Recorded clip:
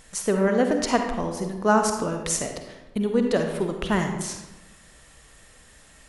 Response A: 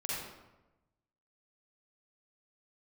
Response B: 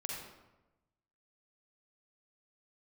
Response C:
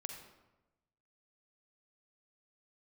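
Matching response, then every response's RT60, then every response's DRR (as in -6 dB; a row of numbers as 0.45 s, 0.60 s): C; 1.0 s, 1.0 s, 1.0 s; -6.5 dB, -2.0 dB, 4.0 dB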